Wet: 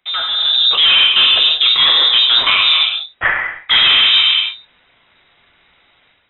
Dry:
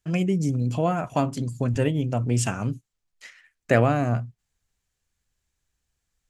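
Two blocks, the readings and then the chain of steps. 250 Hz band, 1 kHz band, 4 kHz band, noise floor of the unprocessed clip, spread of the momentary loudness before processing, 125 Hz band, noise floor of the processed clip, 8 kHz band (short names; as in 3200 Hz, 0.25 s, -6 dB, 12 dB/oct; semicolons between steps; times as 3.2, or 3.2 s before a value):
under -15 dB, +7.0 dB, +38.0 dB, -80 dBFS, 9 LU, under -20 dB, -56 dBFS, under -40 dB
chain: non-linear reverb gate 0.37 s falling, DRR 3 dB; overdrive pedal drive 28 dB, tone 1200 Hz, clips at -3 dBFS; high shelf 2100 Hz +6.5 dB; reverse; compressor 6:1, threshold -22 dBFS, peak gain reduction 12.5 dB; reverse; inverted band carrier 3800 Hz; dynamic EQ 1300 Hz, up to +4 dB, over -45 dBFS, Q 2; AGC gain up to 10 dB; gain +2.5 dB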